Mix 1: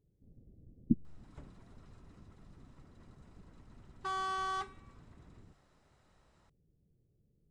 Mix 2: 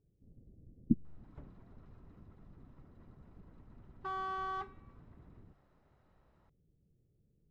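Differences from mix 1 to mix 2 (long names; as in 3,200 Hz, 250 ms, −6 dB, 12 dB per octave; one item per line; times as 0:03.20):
background: add high-frequency loss of the air 66 metres
master: add low-pass filter 1,400 Hz 6 dB per octave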